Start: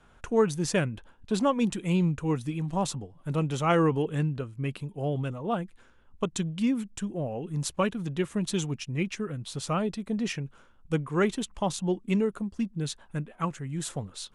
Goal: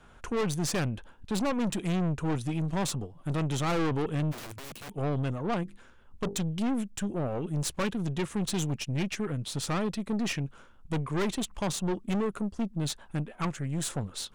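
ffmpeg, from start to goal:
-filter_complex "[0:a]asettb=1/sr,asplit=3[a][b][c];[a]atrim=end=5.634[d];[b]atrim=start=5.63:end=6.41,asetpts=PTS-STARTPTS,afade=t=in:d=0.004:c=qsin,afade=t=out:st=0.776:d=0.004:c=qsin,bandreject=f=50:t=h:w=6,bandreject=f=100:t=h:w=6,bandreject=f=150:t=h:w=6,bandreject=f=200:t=h:w=6,bandreject=f=250:t=h:w=6,bandreject=f=300:t=h:w=6,bandreject=f=350:t=h:w=6,bandreject=f=400:t=h:w=6,bandreject=f=450:t=h:w=6,bandreject=f=500:t=h:w=6[e];[c]atrim=start=6.406[f];[d][e]acrossfade=d=0.004:c1=hsin:c2=qsin[g];[g][f]acrossfade=d=0.004:c1=qsin:c2=hsin,aeval=exprs='(tanh(35.5*val(0)+0.45)-tanh(0.45))/35.5':c=same,asplit=3[h][i][j];[h]afade=t=out:st=4.31:d=0.02[k];[i]aeval=exprs='(mod(126*val(0)+1,2)-1)/126':c=same,afade=t=in:st=4.31:d=0.02,afade=t=out:st=4.92:d=0.02[l];[j]afade=t=in:st=4.92:d=0.02[m];[k][l][m]amix=inputs=3:normalize=0,volume=5dB"

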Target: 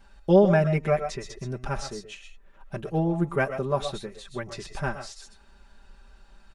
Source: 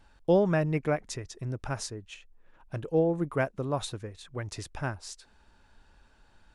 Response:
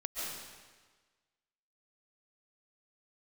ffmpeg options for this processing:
-filter_complex "[0:a]aecho=1:1:5.1:0.94[a];[1:a]atrim=start_sample=2205,afade=t=out:st=0.18:d=0.01,atrim=end_sample=8379[b];[a][b]afir=irnorm=-1:irlink=0,acrossover=split=5100[c][d];[d]acompressor=threshold=-52dB:ratio=4:attack=1:release=60[e];[c][e]amix=inputs=2:normalize=0,volume=4.5dB"

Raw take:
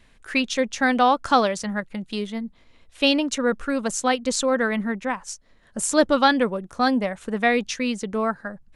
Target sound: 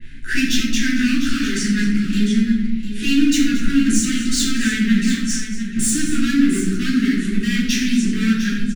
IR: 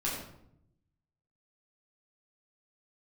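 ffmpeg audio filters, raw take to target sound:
-filter_complex "[0:a]highshelf=f=3.7k:g=-7.5,asplit=2[a][b];[b]acompressor=threshold=-34dB:ratio=6,volume=1.5dB[c];[a][c]amix=inputs=2:normalize=0,alimiter=limit=-15dB:level=0:latency=1:release=37,asoftclip=type=hard:threshold=-26.5dB,asuperstop=centerf=730:order=12:qfactor=0.69,aecho=1:1:227|701:0.2|0.299[d];[1:a]atrim=start_sample=2205[e];[d][e]afir=irnorm=-1:irlink=0,adynamicequalizer=threshold=0.00891:dfrequency=2900:dqfactor=0.7:tfrequency=2900:tqfactor=0.7:attack=5:release=100:ratio=0.375:range=2:mode=boostabove:tftype=highshelf,volume=4dB"

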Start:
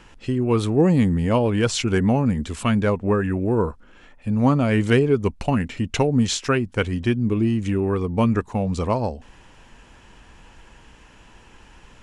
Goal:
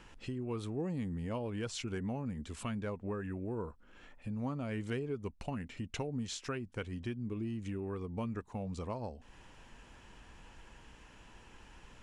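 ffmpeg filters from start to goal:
-af "acompressor=threshold=-37dB:ratio=2,volume=-7.5dB"

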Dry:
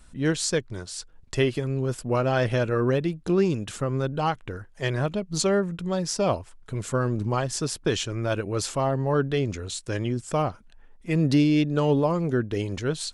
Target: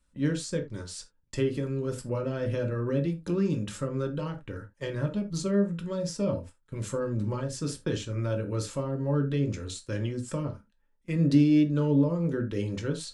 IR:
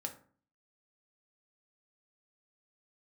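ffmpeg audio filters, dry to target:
-filter_complex "[0:a]agate=range=-15dB:threshold=-40dB:ratio=16:detection=peak,acrossover=split=440[a][b];[b]acompressor=threshold=-33dB:ratio=6[c];[a][c]amix=inputs=2:normalize=0,asuperstop=centerf=760:order=4:qfactor=4.7[d];[1:a]atrim=start_sample=2205,afade=t=out:st=0.14:d=0.01,atrim=end_sample=6615[e];[d][e]afir=irnorm=-1:irlink=0,volume=-1.5dB"

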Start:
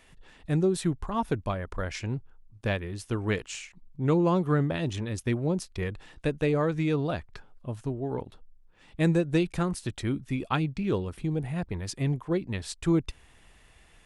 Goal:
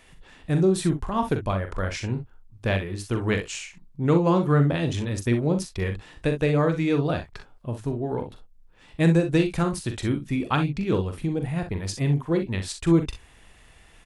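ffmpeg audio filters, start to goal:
-af "aecho=1:1:42|62:0.398|0.266,volume=3.5dB"

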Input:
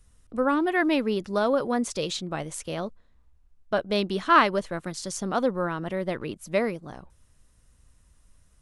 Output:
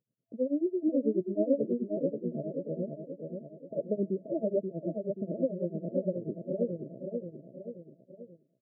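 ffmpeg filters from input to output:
-af "aresample=11025,asoftclip=type=tanh:threshold=-15dB,aresample=44100,tremolo=f=9.2:d=0.94,aecho=1:1:531|1062|1593|2124|2655|3186:0.562|0.276|0.135|0.0662|0.0324|0.0159,agate=range=-12dB:threshold=-52dB:ratio=16:detection=peak,afftfilt=real='re*between(b*sr/4096,110,670)':imag='im*between(b*sr/4096,110,670)':win_size=4096:overlap=0.75"

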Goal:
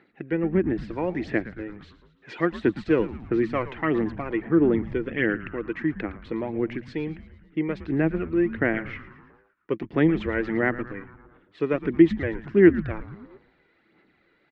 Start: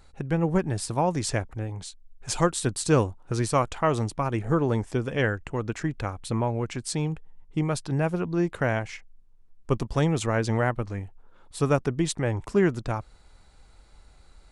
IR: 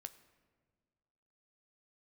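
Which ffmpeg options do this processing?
-filter_complex "[0:a]equalizer=f=940:w=1.4:g=-9,aphaser=in_gain=1:out_gain=1:delay=2.1:decay=0.46:speed=1.5:type=sinusoidal,highpass=f=180:w=0.5412,highpass=f=180:w=1.3066,equalizer=f=330:t=q:w=4:g=10,equalizer=f=560:t=q:w=4:g=-4,equalizer=f=1.9k:t=q:w=4:g=9,lowpass=f=2.9k:w=0.5412,lowpass=f=2.9k:w=1.3066,asplit=7[a][b][c][d][e][f][g];[b]adelay=113,afreqshift=-120,volume=-14.5dB[h];[c]adelay=226,afreqshift=-240,volume=-18.9dB[i];[d]adelay=339,afreqshift=-360,volume=-23.4dB[j];[e]adelay=452,afreqshift=-480,volume=-27.8dB[k];[f]adelay=565,afreqshift=-600,volume=-32.2dB[l];[g]adelay=678,afreqshift=-720,volume=-36.7dB[m];[a][h][i][j][k][l][m]amix=inputs=7:normalize=0,volume=-1dB"

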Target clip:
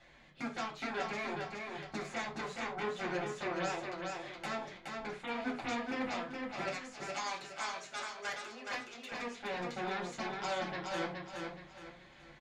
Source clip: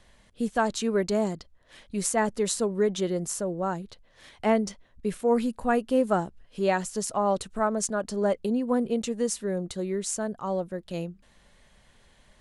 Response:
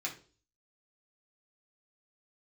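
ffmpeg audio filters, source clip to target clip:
-filter_complex "[0:a]lowpass=4k,acrossover=split=2800[a][b];[b]acompressor=threshold=-52dB:ratio=4:attack=1:release=60[c];[a][c]amix=inputs=2:normalize=0,asettb=1/sr,asplit=3[d][e][f];[d]atrim=end=6.694[g];[e]atrim=start=6.69:end=9.12,asetpts=PTS-STARTPTS,afade=t=in:d=0.004:c=qsin,afade=t=out:st=2.426:d=0.004:c=qsin,highpass=1.3k[h];[f]atrim=start=9.116[i];[g][h]acrossfade=d=0.004:c1=hsin:c2=qsin[j];[j][i]acrossfade=d=0.004:c1=qsin:c2=hsin,acompressor=threshold=-27dB:ratio=6,alimiter=level_in=2dB:limit=-24dB:level=0:latency=1:release=397,volume=-2dB,aeval=exprs='0.0501*(cos(1*acos(clip(val(0)/0.0501,-1,1)))-cos(1*PI/2))+0.02*(cos(7*acos(clip(val(0)/0.0501,-1,1)))-cos(7*PI/2))':c=same,flanger=delay=1.5:depth=6.1:regen=62:speed=1.2:shape=sinusoidal,aecho=1:1:420|840|1260|1680:0.631|0.221|0.0773|0.0271[k];[1:a]atrim=start_sample=2205,afade=t=out:st=0.16:d=0.01,atrim=end_sample=7497[l];[k][l]afir=irnorm=-1:irlink=0"

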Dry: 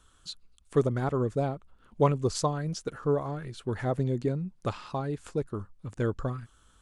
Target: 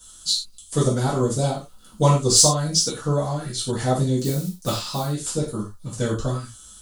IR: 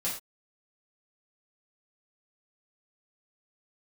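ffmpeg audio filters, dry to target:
-filter_complex "[0:a]asettb=1/sr,asplit=3[a][b][c];[a]atrim=end=1.164[d];[b]atrim=start=1.16:end=2.11,asetpts=PTS-STARTPTS,afade=t=in:d=0.004:c=qsin,afade=t=out:st=0.946:d=0.004:c=qsin,bass=f=250:g=0,treble=f=4k:g=4[e];[c]atrim=start=2.106[f];[d][e]acrossfade=d=0.004:c1=hsin:c2=qsin[g];[g][f]acrossfade=d=0.004:c1=qsin:c2=hsin,asettb=1/sr,asplit=3[h][i][j];[h]atrim=end=4.194[k];[i]atrim=start=4.19:end=5.04,asetpts=PTS-STARTPTS,afade=t=in:d=0.004:c=qsin,afade=t=out:st=0.846:d=0.004:c=qsin,acrusher=bits=8:mode=log:mix=0:aa=0.000001[l];[j]atrim=start=5.036[m];[k][l]acrossfade=d=0.004:c1=hsin:c2=qsin[n];[n][m]acrossfade=d=0.004:c1=qsin:c2=hsin,aexciter=amount=2.8:drive=9.7:freq=3.4k[o];[1:a]atrim=start_sample=2205,asetrate=48510,aresample=44100[p];[o][p]afir=irnorm=-1:irlink=0,volume=2.5dB"

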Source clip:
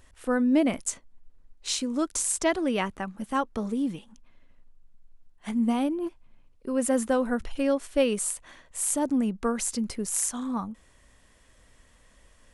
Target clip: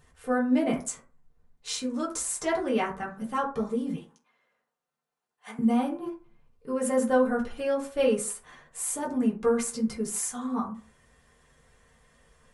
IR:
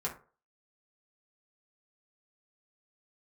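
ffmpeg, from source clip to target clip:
-filter_complex "[0:a]asettb=1/sr,asplit=3[a][b][c];[a]atrim=end=3.954[d];[b]atrim=start=3.95:end=5.59,asetpts=PTS-STARTPTS,afade=t=in:d=0.004:c=qsin,afade=t=out:st=1.636:d=0.004:c=qsin,highpass=540[e];[c]atrim=start=5.586[f];[d][e]acrossfade=d=0.004:c1=hsin:c2=qsin[g];[g][f]acrossfade=d=0.004:c1=qsin:c2=hsin[h];[1:a]atrim=start_sample=2205[i];[h][i]afir=irnorm=-1:irlink=0,volume=-3.5dB"

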